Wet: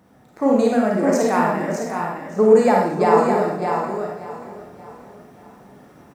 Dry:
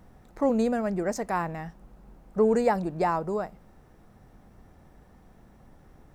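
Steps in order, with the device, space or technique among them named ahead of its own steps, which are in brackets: feedback echo 0.583 s, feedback 44%, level -15 dB; echo 0.612 s -6 dB; far laptop microphone (reverb RT60 0.70 s, pre-delay 34 ms, DRR -1.5 dB; HPF 140 Hz 12 dB/oct; AGC gain up to 5 dB); gain +1 dB

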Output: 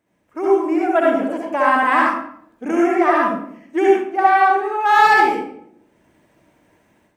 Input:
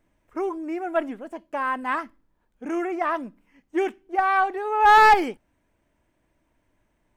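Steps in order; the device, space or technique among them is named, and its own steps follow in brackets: far laptop microphone (reverb RT60 0.65 s, pre-delay 60 ms, DRR -3.5 dB; HPF 120 Hz 12 dB/oct; AGC gain up to 10 dB); gain -1 dB

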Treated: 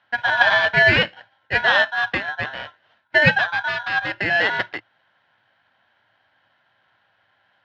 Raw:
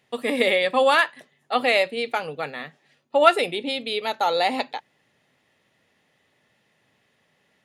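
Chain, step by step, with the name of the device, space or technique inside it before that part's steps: 3.2–4.3 dynamic EQ 890 Hz, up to -4 dB, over -29 dBFS, Q 0.9; ring modulator pedal into a guitar cabinet (polarity switched at an audio rate 1200 Hz; speaker cabinet 83–3500 Hz, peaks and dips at 110 Hz +9 dB, 420 Hz -8 dB, 820 Hz +3 dB, 1600 Hz +9 dB); gain +1 dB

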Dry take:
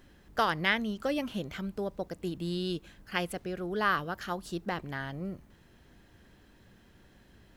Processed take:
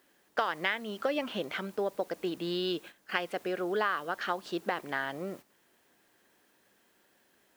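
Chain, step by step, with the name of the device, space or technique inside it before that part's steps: baby monitor (BPF 390–3600 Hz; compressor, threshold -34 dBFS, peak gain reduction 12 dB; white noise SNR 25 dB; gate -53 dBFS, range -12 dB); gain +7.5 dB

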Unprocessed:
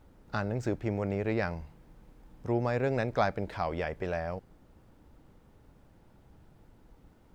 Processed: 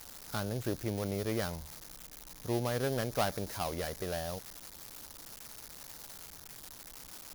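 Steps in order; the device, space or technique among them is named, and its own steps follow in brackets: budget class-D amplifier (switching dead time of 0.18 ms; switching spikes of -24 dBFS); gain -3.5 dB

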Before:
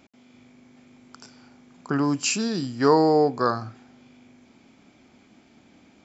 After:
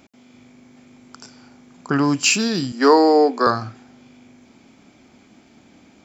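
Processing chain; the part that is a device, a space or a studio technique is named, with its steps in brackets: 2.72–3.47 steep high-pass 200 Hz 72 dB/oct; dynamic EQ 2700 Hz, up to +6 dB, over -42 dBFS, Q 0.81; exciter from parts (in parallel at -7.5 dB: HPF 4500 Hz 12 dB/oct + soft clip -34.5 dBFS, distortion -3 dB); on the sum: gain +4.5 dB

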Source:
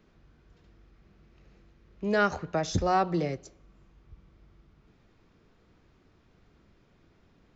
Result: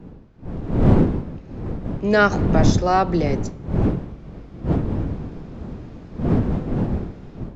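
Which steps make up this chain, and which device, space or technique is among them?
smartphone video outdoors (wind noise 220 Hz -31 dBFS; AGC gain up to 15 dB; gain -1 dB; AAC 96 kbps 22050 Hz)

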